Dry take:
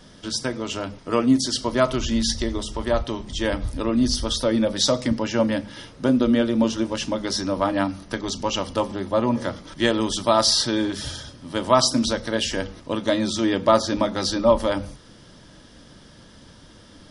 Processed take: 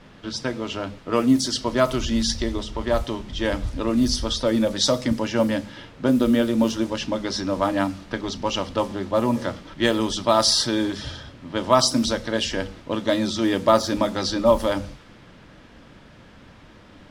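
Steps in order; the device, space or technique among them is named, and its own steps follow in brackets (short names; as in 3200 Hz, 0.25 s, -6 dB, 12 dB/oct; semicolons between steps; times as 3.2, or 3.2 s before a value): cassette deck with a dynamic noise filter (white noise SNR 23 dB; low-pass opened by the level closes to 2200 Hz, open at -15 dBFS)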